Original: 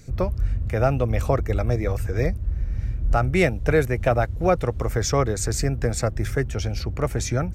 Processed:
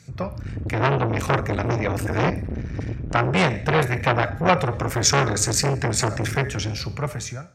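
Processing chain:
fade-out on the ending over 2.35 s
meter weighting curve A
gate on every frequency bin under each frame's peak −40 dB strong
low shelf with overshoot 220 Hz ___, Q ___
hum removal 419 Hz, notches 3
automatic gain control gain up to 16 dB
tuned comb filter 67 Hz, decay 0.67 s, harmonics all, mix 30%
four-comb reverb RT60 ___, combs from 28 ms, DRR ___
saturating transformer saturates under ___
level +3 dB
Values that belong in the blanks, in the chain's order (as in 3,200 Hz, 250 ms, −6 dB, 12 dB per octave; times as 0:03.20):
+12 dB, 1.5, 0.45 s, 14.5 dB, 1,600 Hz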